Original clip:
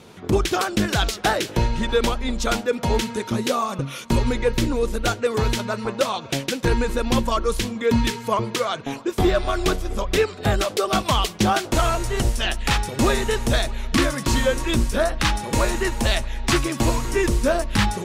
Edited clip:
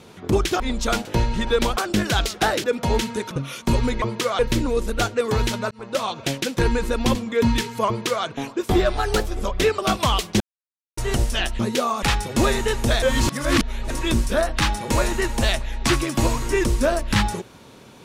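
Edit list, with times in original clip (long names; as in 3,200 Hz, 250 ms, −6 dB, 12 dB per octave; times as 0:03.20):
0:00.60–0:01.47: swap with 0:02.19–0:02.64
0:03.31–0:03.74: move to 0:12.65
0:05.77–0:06.12: fade in linear
0:07.21–0:07.64: remove
0:08.37–0:08.74: duplicate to 0:04.45
0:09.46–0:09.80: play speed 116%
0:10.32–0:10.84: remove
0:11.46–0:12.03: silence
0:13.65–0:14.53: reverse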